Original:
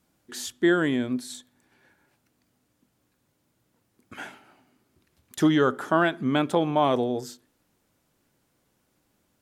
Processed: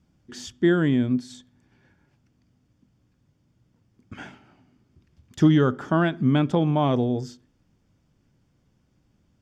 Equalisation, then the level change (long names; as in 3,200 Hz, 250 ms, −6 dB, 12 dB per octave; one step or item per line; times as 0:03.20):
high-frequency loss of the air 200 metres
bass and treble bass +14 dB, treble +14 dB
notch filter 4,000 Hz, Q 7.3
−2.0 dB